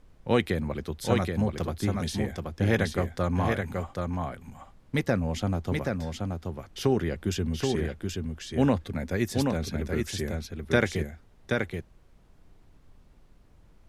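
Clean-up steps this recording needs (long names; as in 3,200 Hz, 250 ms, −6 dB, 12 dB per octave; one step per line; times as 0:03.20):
noise reduction from a noise print 18 dB
echo removal 778 ms −4 dB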